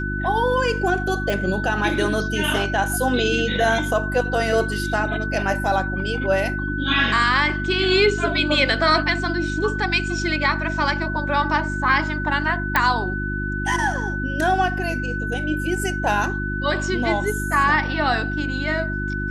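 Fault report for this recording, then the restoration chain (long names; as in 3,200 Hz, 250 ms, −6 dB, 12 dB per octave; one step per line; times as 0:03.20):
mains hum 50 Hz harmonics 7 −27 dBFS
whistle 1,500 Hz −27 dBFS
0:01.30: click
0:12.76: click −4 dBFS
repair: click removal
hum removal 50 Hz, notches 7
notch filter 1,500 Hz, Q 30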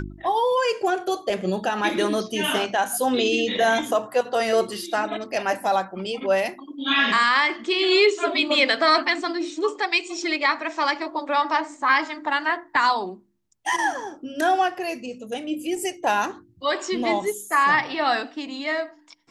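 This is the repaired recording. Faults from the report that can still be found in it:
none of them is left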